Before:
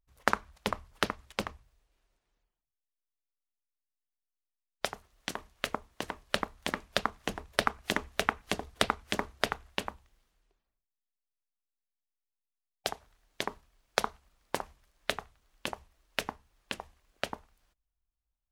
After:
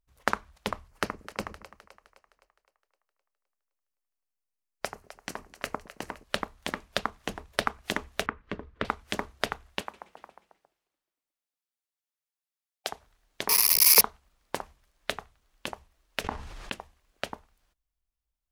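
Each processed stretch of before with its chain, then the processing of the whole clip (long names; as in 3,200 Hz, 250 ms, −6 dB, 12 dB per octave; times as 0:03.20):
0:00.88–0:06.24: parametric band 3,500 Hz −9.5 dB 0.39 octaves + echo with a time of its own for lows and highs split 460 Hz, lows 110 ms, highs 258 ms, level −14 dB
0:08.26–0:08.85: low-pass filter 1,700 Hz + parametric band 750 Hz −14 dB 0.43 octaves
0:09.81–0:12.92: delay with pitch and tempo change per echo 126 ms, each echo −2 semitones, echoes 3, each echo −6 dB + high-pass filter 450 Hz 6 dB per octave + single-tap delay 358 ms −9.5 dB
0:13.49–0:14.01: spike at every zero crossing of −10.5 dBFS + EQ curve with evenly spaced ripples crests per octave 0.85, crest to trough 15 dB
0:16.24–0:16.72: leveller curve on the samples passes 1 + high-frequency loss of the air 56 metres + envelope flattener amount 70%
whole clip: no processing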